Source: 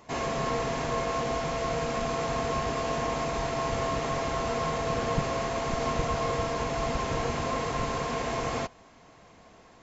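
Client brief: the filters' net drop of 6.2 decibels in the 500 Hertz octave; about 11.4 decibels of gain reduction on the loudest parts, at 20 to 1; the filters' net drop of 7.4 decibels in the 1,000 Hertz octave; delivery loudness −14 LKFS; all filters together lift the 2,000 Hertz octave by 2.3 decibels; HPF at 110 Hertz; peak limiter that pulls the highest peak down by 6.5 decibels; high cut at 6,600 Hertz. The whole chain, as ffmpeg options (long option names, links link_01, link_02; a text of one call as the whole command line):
ffmpeg -i in.wav -af "highpass=110,lowpass=6600,equalizer=frequency=500:width_type=o:gain=-5,equalizer=frequency=1000:width_type=o:gain=-9,equalizer=frequency=2000:width_type=o:gain=5.5,acompressor=threshold=-36dB:ratio=20,volume=28dB,alimiter=limit=-5.5dB:level=0:latency=1" out.wav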